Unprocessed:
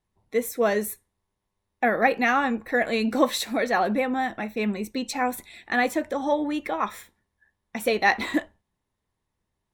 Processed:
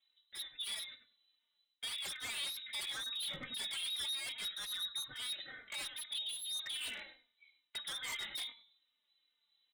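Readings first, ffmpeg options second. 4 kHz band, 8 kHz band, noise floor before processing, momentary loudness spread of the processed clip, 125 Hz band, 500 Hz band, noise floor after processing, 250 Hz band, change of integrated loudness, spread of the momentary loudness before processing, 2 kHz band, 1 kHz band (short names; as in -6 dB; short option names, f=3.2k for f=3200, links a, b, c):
0.0 dB, -6.0 dB, -81 dBFS, 8 LU, -22.0 dB, -36.0 dB, -83 dBFS, -36.5 dB, -14.5 dB, 8 LU, -18.5 dB, -30.5 dB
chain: -filter_complex "[0:a]aecho=1:1:3.2:0.46,bandreject=f=112.1:t=h:w=4,bandreject=f=224.2:t=h:w=4,bandreject=f=336.3:t=h:w=4,bandreject=f=448.4:t=h:w=4,bandreject=f=560.5:t=h:w=4,areverse,acompressor=threshold=-36dB:ratio=6,areverse,lowpass=f=3.4k:t=q:w=0.5098,lowpass=f=3.4k:t=q:w=0.6013,lowpass=f=3.4k:t=q:w=0.9,lowpass=f=3.4k:t=q:w=2.563,afreqshift=-4000,asplit=2[a][b];[b]adelay=97,lowpass=f=1.5k:p=1,volume=-7.5dB,asplit=2[c][d];[d]adelay=97,lowpass=f=1.5k:p=1,volume=0.2,asplit=2[e][f];[f]adelay=97,lowpass=f=1.5k:p=1,volume=0.2[g];[c][e][g]amix=inputs=3:normalize=0[h];[a][h]amix=inputs=2:normalize=0,aeval=exprs='0.0158*(abs(mod(val(0)/0.0158+3,4)-2)-1)':c=same,asplit=2[i][j];[j]adelay=3.2,afreqshift=-2.4[k];[i][k]amix=inputs=2:normalize=1,volume=3dB"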